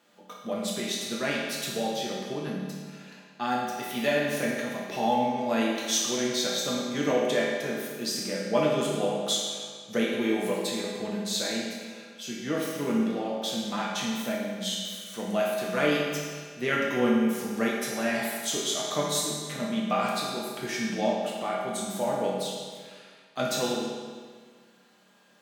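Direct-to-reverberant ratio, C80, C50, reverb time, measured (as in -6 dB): -5.0 dB, 2.0 dB, 0.0 dB, 1.7 s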